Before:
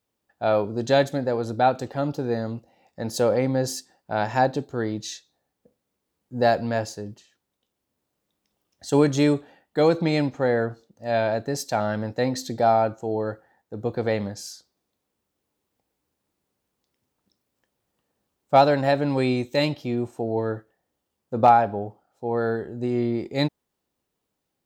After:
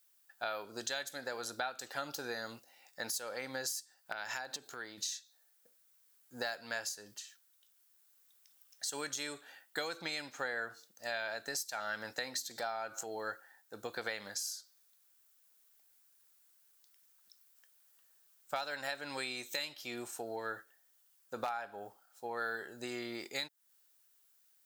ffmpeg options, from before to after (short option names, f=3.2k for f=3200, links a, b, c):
-filter_complex "[0:a]asettb=1/sr,asplit=3[a][b][c];[a]atrim=end=4.124[d];[b]atrim=start=4.12:end=4.98,asetpts=PTS-STARTPTS,afade=t=in:d=0.004:c=qsin,afade=t=out:st=0.856:d=0.004:c=qsin,acompressor=threshold=-32dB:ratio=8:attack=3.2:release=140:knee=1:detection=peak[e];[c]atrim=start=4.976[f];[d][e]acrossfade=d=0.004:c1=hsin:c2=qsin[g];[g][f]acrossfade=d=0.004:c1=qsin:c2=hsin,asettb=1/sr,asplit=3[h][i][j];[h]atrim=end=12.514[k];[i]atrim=start=12.51:end=13.23,asetpts=PTS-STARTPTS,afade=t=in:d=0.004:c=qsin,afade=t=out:st=0.716:d=0.004:c=qsin,acompressor=mode=upward:threshold=-22dB:ratio=2.5:attack=3.2:release=140:knee=2.83:detection=peak[l];[j]atrim=start=13.226[m];[k][l]acrossfade=d=0.004:c1=hsin:c2=qsin[n];[n][m]acrossfade=d=0.004:c1=qsin:c2=hsin,aderivative,acompressor=threshold=-48dB:ratio=8,equalizer=f=1.5k:t=o:w=0.62:g=8,volume=11dB"